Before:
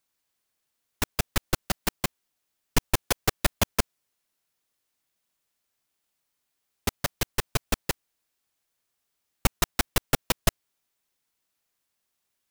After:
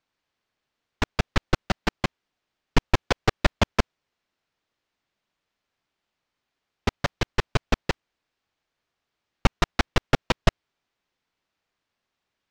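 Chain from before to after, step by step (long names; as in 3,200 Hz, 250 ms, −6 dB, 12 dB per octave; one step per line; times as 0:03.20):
high-frequency loss of the air 170 metres
level +5 dB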